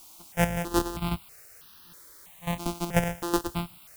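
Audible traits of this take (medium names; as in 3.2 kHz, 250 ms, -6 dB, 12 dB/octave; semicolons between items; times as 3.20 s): a buzz of ramps at a fixed pitch in blocks of 256 samples; chopped level 2.7 Hz, depth 65%, duty 20%; a quantiser's noise floor 10-bit, dither triangular; notches that jump at a steady rate 3.1 Hz 480–2200 Hz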